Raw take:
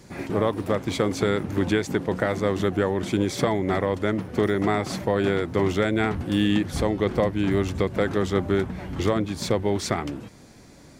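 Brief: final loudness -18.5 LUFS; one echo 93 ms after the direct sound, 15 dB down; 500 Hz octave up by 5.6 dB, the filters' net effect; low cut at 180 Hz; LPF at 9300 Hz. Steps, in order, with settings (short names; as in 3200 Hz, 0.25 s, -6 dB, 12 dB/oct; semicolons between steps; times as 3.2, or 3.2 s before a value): HPF 180 Hz; LPF 9300 Hz; bell 500 Hz +7 dB; echo 93 ms -15 dB; gain +3 dB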